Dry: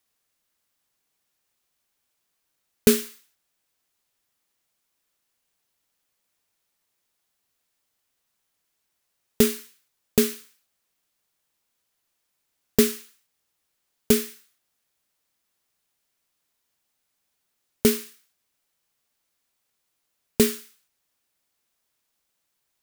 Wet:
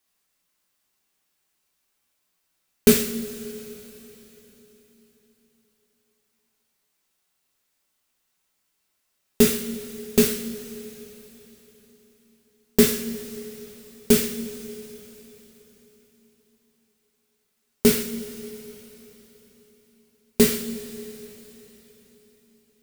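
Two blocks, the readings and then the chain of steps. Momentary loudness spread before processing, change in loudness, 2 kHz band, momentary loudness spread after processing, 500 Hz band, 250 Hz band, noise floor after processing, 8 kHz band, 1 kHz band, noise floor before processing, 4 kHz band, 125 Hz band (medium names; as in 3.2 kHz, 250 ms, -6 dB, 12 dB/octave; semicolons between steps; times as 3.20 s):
17 LU, 0.0 dB, +3.0 dB, 20 LU, +2.5 dB, +3.0 dB, -74 dBFS, +3.0 dB, +2.5 dB, -77 dBFS, +2.5 dB, +3.0 dB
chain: two-slope reverb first 0.44 s, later 4.1 s, from -18 dB, DRR -1.5 dB; trim -1 dB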